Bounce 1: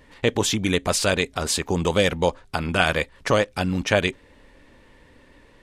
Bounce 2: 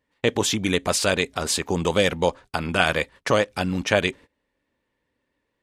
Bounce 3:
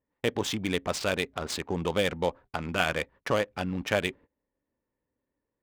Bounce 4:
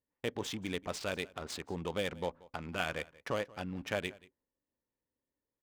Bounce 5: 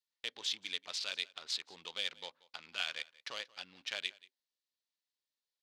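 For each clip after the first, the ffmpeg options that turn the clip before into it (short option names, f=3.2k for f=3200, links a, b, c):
-af "highpass=f=100:p=1,agate=range=-22dB:threshold=-41dB:ratio=16:detection=peak"
-af "adynamicsmooth=sensitivity=3:basefreq=1.4k,volume=-6.5dB"
-af "aecho=1:1:182:0.0794,volume=-8.5dB"
-af "bandpass=f=4.1k:t=q:w=2.4:csg=0,volume=9.5dB"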